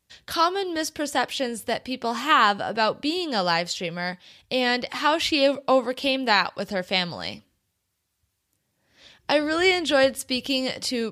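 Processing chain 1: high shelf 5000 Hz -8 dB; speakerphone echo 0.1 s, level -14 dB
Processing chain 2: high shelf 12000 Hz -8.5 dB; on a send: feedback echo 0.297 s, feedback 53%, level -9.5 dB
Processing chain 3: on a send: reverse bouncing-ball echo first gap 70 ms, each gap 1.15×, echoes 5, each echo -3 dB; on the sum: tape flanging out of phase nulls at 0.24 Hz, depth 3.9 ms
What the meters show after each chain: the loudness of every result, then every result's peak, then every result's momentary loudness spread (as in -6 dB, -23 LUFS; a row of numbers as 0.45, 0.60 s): -24.0, -23.0, -23.5 LUFS; -6.5, -4.5, -6.5 dBFS; 10, 10, 11 LU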